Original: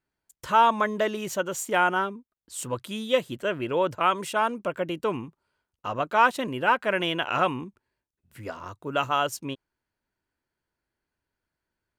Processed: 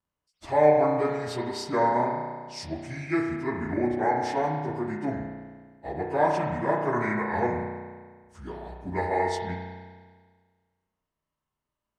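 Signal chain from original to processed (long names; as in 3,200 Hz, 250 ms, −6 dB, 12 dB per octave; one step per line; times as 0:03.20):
phase-vocoder pitch shift without resampling −7.5 semitones
spring reverb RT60 1.6 s, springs 33 ms, chirp 65 ms, DRR 1 dB
every ending faded ahead of time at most 190 dB per second
level −2 dB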